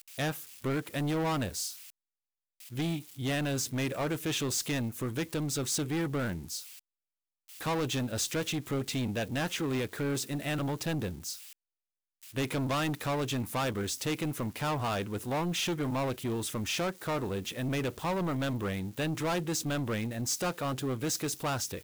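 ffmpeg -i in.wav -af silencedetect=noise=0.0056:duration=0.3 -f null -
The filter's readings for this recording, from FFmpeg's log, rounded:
silence_start: 1.90
silence_end: 2.60 | silence_duration: 0.70
silence_start: 6.79
silence_end: 7.48 | silence_duration: 0.69
silence_start: 11.53
silence_end: 12.22 | silence_duration: 0.69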